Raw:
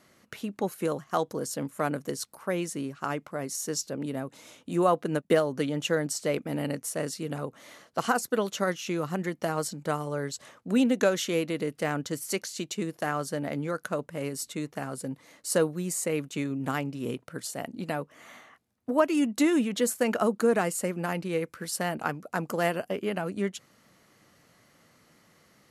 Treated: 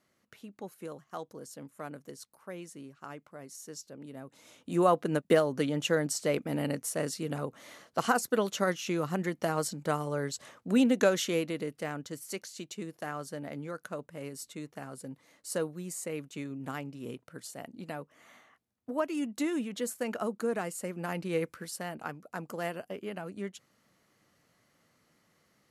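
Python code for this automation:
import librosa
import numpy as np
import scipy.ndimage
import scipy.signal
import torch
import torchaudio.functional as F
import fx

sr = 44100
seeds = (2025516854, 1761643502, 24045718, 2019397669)

y = fx.gain(x, sr, db=fx.line((4.08, -13.0), (4.79, -1.0), (11.21, -1.0), (11.97, -8.0), (20.79, -8.0), (21.46, -0.5), (21.76, -8.5)))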